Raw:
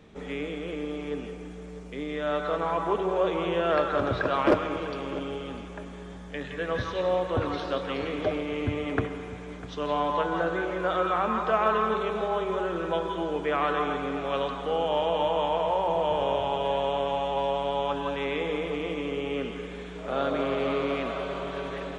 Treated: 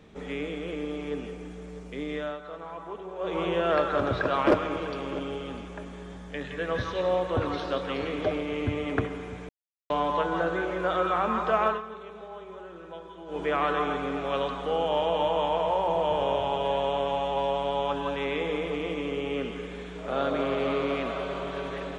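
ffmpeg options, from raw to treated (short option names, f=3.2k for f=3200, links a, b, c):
-filter_complex "[0:a]asplit=7[a][b][c][d][e][f][g];[a]atrim=end=2.37,asetpts=PTS-STARTPTS,afade=t=out:st=2.16:d=0.21:silence=0.251189[h];[b]atrim=start=2.37:end=3.18,asetpts=PTS-STARTPTS,volume=-12dB[i];[c]atrim=start=3.18:end=9.49,asetpts=PTS-STARTPTS,afade=t=in:d=0.21:silence=0.251189,afade=t=out:st=6.306:d=0.004:c=hsin[j];[d]atrim=start=9.49:end=9.9,asetpts=PTS-STARTPTS,volume=0[k];[e]atrim=start=9.9:end=11.82,asetpts=PTS-STARTPTS,afade=t=in:d=0.004:c=hsin,afade=t=out:st=1.75:d=0.17:silence=0.199526[l];[f]atrim=start=11.82:end=13.26,asetpts=PTS-STARTPTS,volume=-14dB[m];[g]atrim=start=13.26,asetpts=PTS-STARTPTS,afade=t=in:d=0.17:silence=0.199526[n];[h][i][j][k][l][m][n]concat=n=7:v=0:a=1"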